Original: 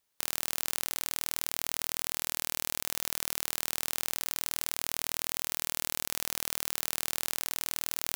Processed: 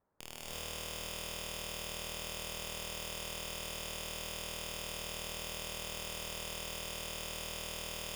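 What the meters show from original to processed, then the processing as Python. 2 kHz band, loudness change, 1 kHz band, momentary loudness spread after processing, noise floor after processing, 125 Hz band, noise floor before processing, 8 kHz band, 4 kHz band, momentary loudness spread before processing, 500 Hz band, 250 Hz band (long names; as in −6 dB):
−4.5 dB, −8.0 dB, −4.0 dB, 0 LU, −46 dBFS, +2.5 dB, −79 dBFS, −9.0 dB, −3.5 dB, 0 LU, +1.5 dB, −1.5 dB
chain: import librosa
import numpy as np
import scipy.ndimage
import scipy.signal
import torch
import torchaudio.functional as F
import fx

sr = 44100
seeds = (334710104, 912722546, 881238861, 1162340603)

p1 = scipy.signal.sosfilt(scipy.signal.bessel(6, 900.0, 'lowpass', norm='mag', fs=sr, output='sos'), x)
p2 = fx.cheby_harmonics(p1, sr, harmonics=(6,), levels_db=(-23,), full_scale_db=-29.0)
p3 = (np.mod(10.0 ** (38.0 / 20.0) * p2 + 1.0, 2.0) - 1.0) / 10.0 ** (38.0 / 20.0)
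p4 = p3 + fx.echo_single(p3, sr, ms=549, db=-11.0, dry=0)
p5 = fx.rev_gated(p4, sr, seeds[0], gate_ms=370, shape='rising', drr_db=-5.5)
y = p5 * librosa.db_to_amplitude(9.5)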